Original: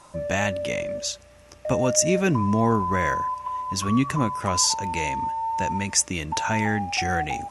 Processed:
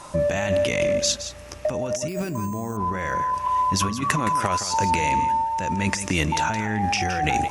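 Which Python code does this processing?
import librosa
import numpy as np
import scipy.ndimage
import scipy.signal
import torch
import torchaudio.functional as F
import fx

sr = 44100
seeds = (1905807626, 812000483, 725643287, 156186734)

y = fx.low_shelf(x, sr, hz=480.0, db=-7.5, at=(4.01, 4.69))
y = fx.over_compress(y, sr, threshold_db=-29.0, ratio=-1.0)
y = y + 10.0 ** (-11.0 / 20.0) * np.pad(y, (int(168 * sr / 1000.0), 0))[:len(y)]
y = fx.resample_bad(y, sr, factor=6, down='filtered', up='hold', at=(2.08, 2.77))
y = y * librosa.db_to_amplitude(5.0)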